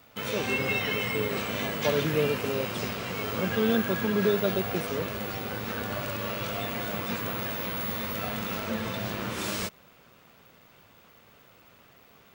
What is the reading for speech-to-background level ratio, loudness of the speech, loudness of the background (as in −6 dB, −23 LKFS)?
0.5 dB, −30.5 LKFS, −31.0 LKFS